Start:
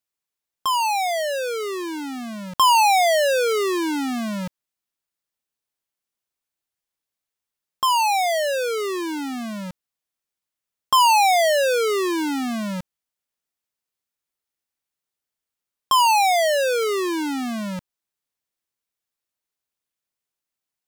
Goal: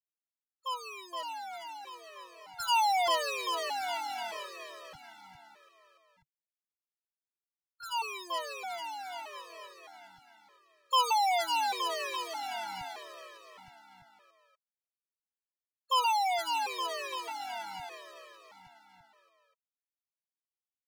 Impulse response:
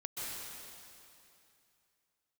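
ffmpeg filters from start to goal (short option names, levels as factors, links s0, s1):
-filter_complex "[0:a]acrossover=split=220|3000[s0][s1][s2];[s1]acompressor=threshold=0.0126:ratio=2[s3];[s0][s3][s2]amix=inputs=3:normalize=0,agate=range=0.0224:threshold=0.0891:ratio=3:detection=peak,acrossover=split=280[s4][s5];[s4]acrusher=samples=40:mix=1:aa=0.000001[s6];[s6][s5]amix=inputs=2:normalize=0,firequalizer=gain_entry='entry(140,0);entry(210,-28);entry(680,5);entry(7200,-11)':delay=0.05:min_phase=1,asplit=2[s7][s8];[s8]aecho=0:1:470|869.5|1209|1498|1743:0.631|0.398|0.251|0.158|0.1[s9];[s7][s9]amix=inputs=2:normalize=0,asplit=3[s10][s11][s12];[s11]asetrate=22050,aresample=44100,atempo=2,volume=0.158[s13];[s12]asetrate=58866,aresample=44100,atempo=0.749154,volume=0.2[s14];[s10][s13][s14]amix=inputs=3:normalize=0,afftfilt=real='re*gt(sin(2*PI*0.81*pts/sr)*(1-2*mod(floor(b*sr/1024/330),2)),0)':imag='im*gt(sin(2*PI*0.81*pts/sr)*(1-2*mod(floor(b*sr/1024/330),2)),0)':win_size=1024:overlap=0.75"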